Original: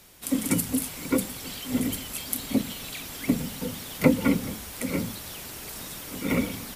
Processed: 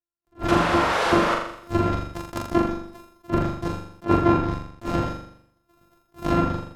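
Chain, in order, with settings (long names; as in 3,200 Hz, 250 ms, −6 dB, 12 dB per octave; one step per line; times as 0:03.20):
samples sorted by size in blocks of 128 samples
noise gate −34 dBFS, range −50 dB
sound drawn into the spectrogram noise, 0:00.48–0:01.35, 400–12,000 Hz −21 dBFS
flat-topped bell 4,300 Hz −8.5 dB 2.8 octaves
mains-hum notches 60/120/180 Hz
in parallel at −7 dB: comparator with hysteresis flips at −27.5 dBFS
on the sum: treble cut that deepens with the level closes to 2,400 Hz, closed at −20 dBFS
on a send: flutter between parallel walls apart 7.1 metres, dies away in 0.69 s
on the sum: level that may rise only so fast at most 320 dB per second
level +3 dB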